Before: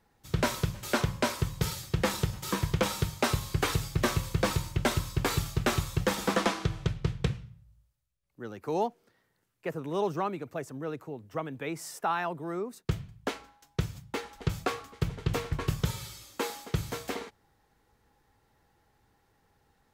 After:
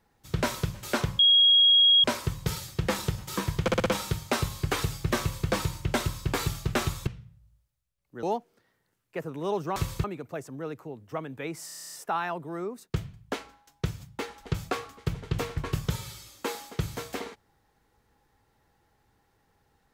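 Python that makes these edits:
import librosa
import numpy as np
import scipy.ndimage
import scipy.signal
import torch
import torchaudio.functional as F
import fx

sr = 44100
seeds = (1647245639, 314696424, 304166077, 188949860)

y = fx.edit(x, sr, fx.insert_tone(at_s=1.19, length_s=0.85, hz=3290.0, db=-15.5),
    fx.stutter(start_s=2.77, slice_s=0.06, count=5),
    fx.duplicate(start_s=4.11, length_s=0.28, to_s=10.26),
    fx.cut(start_s=5.98, length_s=1.34),
    fx.cut(start_s=8.48, length_s=0.25),
    fx.stutter(start_s=11.88, slice_s=0.03, count=10), tone=tone)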